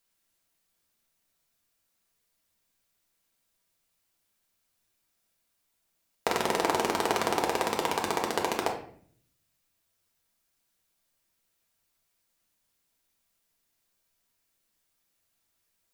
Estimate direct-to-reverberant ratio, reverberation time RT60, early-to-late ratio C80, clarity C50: -0.5 dB, 0.55 s, 11.0 dB, 7.0 dB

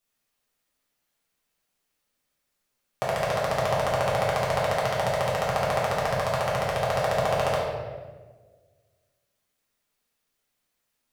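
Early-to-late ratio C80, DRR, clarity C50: 3.0 dB, -7.5 dB, 0.5 dB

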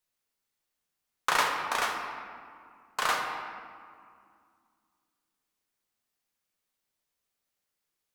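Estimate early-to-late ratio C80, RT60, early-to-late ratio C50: 5.0 dB, 2.2 s, 3.5 dB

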